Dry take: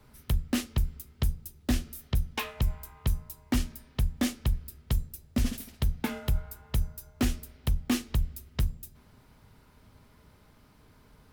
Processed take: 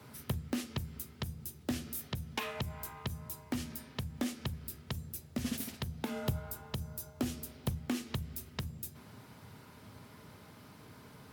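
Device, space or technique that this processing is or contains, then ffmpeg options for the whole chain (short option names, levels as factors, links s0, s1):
podcast mastering chain: -filter_complex "[0:a]asettb=1/sr,asplit=3[s0][s1][s2];[s0]atrim=end=5.874[s3];[s1]atrim=start=5.87:end=7.68,asetpts=PTS-STARTPTS,afade=t=in:d=0.004:c=qsin,afade=t=out:st=1.806:d=0.004:c=qsin,equalizer=f=1900:t=o:w=1.1:g=-4.5[s4];[s2]atrim=start=7.676[s5];[s3][s4]acrossfade=d=0.004:c1=hsin:c2=qsin[s6];[s6][s5]acrossfade=d=0.004:c1=qsin:c2=hsin,highpass=f=92:w=0.5412,highpass=f=92:w=1.3066,deesser=0.7,acompressor=threshold=0.0178:ratio=2.5,alimiter=level_in=1.58:limit=0.0631:level=0:latency=1:release=202,volume=0.631,volume=2.11" -ar 48000 -c:a libmp3lame -b:a 96k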